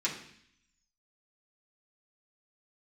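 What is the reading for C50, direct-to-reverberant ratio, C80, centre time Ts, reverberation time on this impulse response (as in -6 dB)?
7.5 dB, -7.0 dB, 10.5 dB, 25 ms, 0.65 s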